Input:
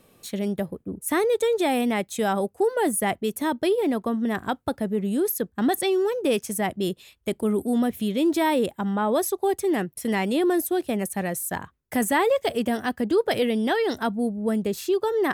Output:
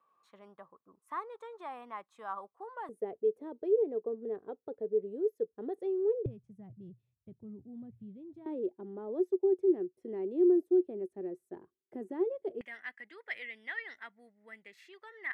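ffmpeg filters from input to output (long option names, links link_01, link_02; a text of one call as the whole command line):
ffmpeg -i in.wav -af "asetnsamples=nb_out_samples=441:pad=0,asendcmd='2.89 bandpass f 440;6.26 bandpass f 120;8.46 bandpass f 370;12.61 bandpass f 2000',bandpass=frequency=1100:width_type=q:width=9.9:csg=0" out.wav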